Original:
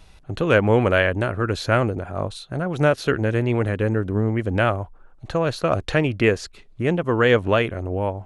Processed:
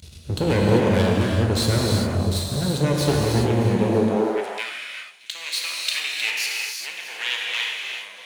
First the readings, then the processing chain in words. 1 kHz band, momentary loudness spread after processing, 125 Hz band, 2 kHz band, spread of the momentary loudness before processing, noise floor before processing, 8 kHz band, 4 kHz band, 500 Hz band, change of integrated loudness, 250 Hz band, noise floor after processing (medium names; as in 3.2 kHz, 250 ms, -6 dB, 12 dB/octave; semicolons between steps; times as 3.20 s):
-4.0 dB, 11 LU, +0.5 dB, -2.5 dB, 11 LU, -49 dBFS, +12.0 dB, +8.0 dB, -3.5 dB, -0.5 dB, +0.5 dB, -42 dBFS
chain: FFT filter 440 Hz 0 dB, 840 Hz -21 dB, 4.2 kHz +6 dB; in parallel at 0 dB: compression, threshold -31 dBFS, peak gain reduction 16.5 dB; on the sum: half-wave rectifier; high-pass sweep 76 Hz -> 2.3 kHz, 3.58–4.46 s; saturation -11.5 dBFS, distortion -27 dB; on a send: feedback echo behind a high-pass 315 ms, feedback 56%, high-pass 2.8 kHz, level -14 dB; on the sum: gated-style reverb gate 430 ms flat, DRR -2.5 dB; trim +2 dB